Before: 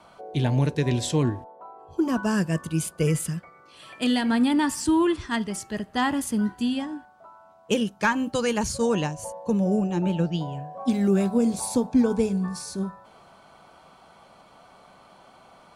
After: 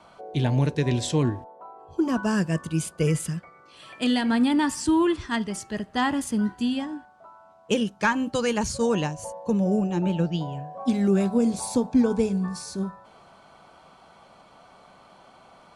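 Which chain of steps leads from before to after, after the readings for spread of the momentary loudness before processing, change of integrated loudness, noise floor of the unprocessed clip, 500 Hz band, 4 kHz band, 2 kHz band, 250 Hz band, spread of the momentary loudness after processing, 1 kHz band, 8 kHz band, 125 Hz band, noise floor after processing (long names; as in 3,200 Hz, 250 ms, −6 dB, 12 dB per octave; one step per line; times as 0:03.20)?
10 LU, 0.0 dB, −54 dBFS, 0.0 dB, 0.0 dB, 0.0 dB, 0.0 dB, 11 LU, 0.0 dB, −1.5 dB, 0.0 dB, −54 dBFS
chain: low-pass filter 9,800 Hz 12 dB per octave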